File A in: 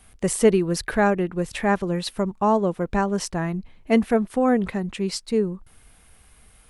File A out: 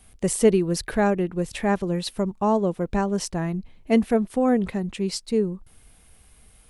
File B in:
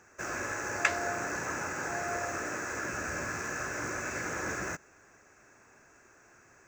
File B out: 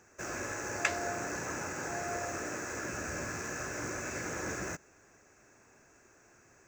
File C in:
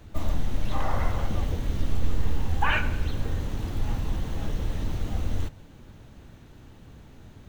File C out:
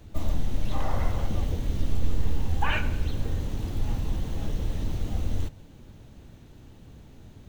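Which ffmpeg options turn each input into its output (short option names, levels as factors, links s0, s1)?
-af "equalizer=f=1400:w=0.83:g=-5"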